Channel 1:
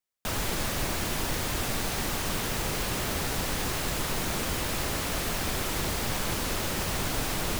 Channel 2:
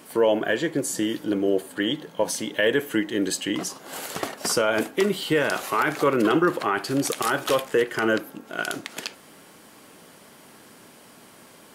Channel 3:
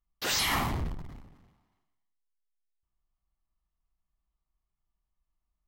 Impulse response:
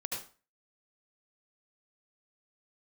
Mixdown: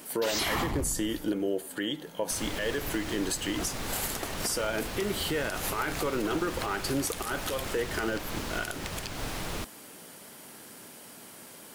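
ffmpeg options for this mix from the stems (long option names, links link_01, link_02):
-filter_complex "[0:a]highshelf=frequency=9300:gain=-9.5,adelay=2050,volume=-4.5dB[link_01];[1:a]bandreject=frequency=1100:width=19,alimiter=limit=-16dB:level=0:latency=1:release=317,crystalizer=i=1:c=0,volume=-1dB[link_02];[2:a]volume=2.5dB[link_03];[link_01][link_02][link_03]amix=inputs=3:normalize=0,alimiter=limit=-20dB:level=0:latency=1:release=165"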